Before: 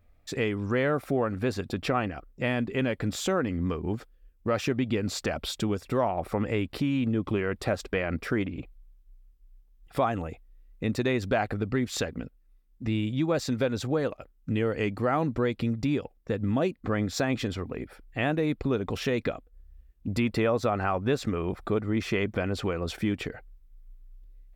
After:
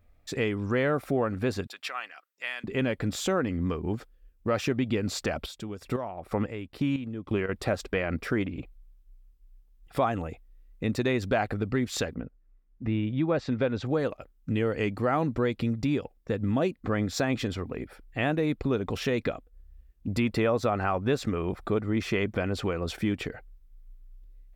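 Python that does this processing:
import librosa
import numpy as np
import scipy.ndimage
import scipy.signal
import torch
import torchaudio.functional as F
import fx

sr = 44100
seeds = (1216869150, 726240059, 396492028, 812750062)

y = fx.highpass(x, sr, hz=1500.0, slope=12, at=(1.67, 2.64))
y = fx.chopper(y, sr, hz=2.0, depth_pct=65, duty_pct=30, at=(5.31, 7.49))
y = fx.lowpass(y, sr, hz=fx.line((12.14, 1600.0), (13.85, 3500.0)), slope=12, at=(12.14, 13.85), fade=0.02)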